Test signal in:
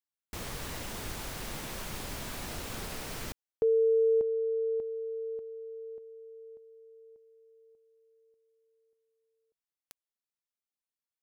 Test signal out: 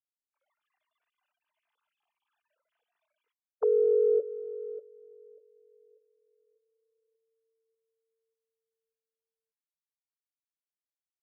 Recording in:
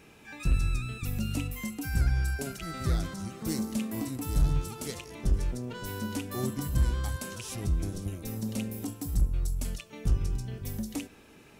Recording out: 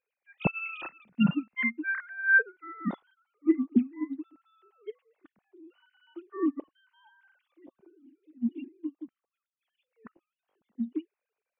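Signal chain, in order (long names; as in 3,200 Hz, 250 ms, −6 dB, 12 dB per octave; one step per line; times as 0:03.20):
three sine waves on the formant tracks
noise reduction from a noise print of the clip's start 13 dB
expander for the loud parts 2.5 to 1, over −36 dBFS
level +2.5 dB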